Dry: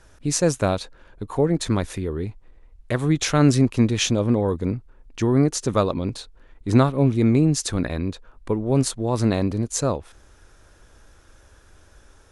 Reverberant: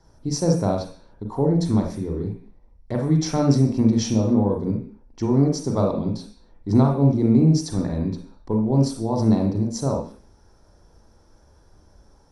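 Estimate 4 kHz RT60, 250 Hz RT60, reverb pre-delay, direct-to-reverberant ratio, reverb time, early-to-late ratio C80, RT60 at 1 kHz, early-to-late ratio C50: no reading, 0.55 s, 35 ms, 1.5 dB, 0.45 s, 11.0 dB, 0.45 s, 6.0 dB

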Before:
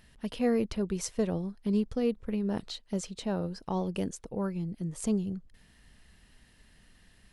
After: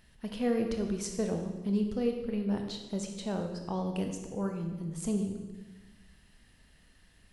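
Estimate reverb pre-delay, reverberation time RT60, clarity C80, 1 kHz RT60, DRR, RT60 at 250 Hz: 19 ms, 1.2 s, 7.5 dB, 1.1 s, 3.5 dB, 1.4 s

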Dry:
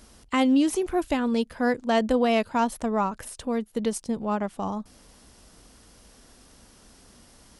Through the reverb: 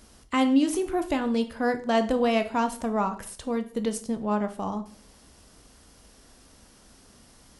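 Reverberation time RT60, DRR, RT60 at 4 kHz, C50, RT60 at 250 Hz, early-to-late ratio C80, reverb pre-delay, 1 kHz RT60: 0.50 s, 8.0 dB, 0.40 s, 13.5 dB, 0.65 s, 18.0 dB, 9 ms, 0.45 s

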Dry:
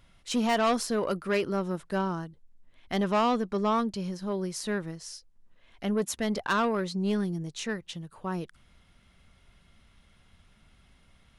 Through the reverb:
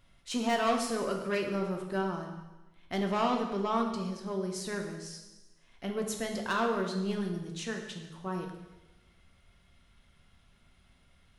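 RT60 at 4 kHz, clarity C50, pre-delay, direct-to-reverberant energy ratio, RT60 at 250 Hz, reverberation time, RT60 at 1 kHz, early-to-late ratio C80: 1.1 s, 5.5 dB, 3 ms, 2.0 dB, 1.2 s, 1.1 s, 1.1 s, 7.5 dB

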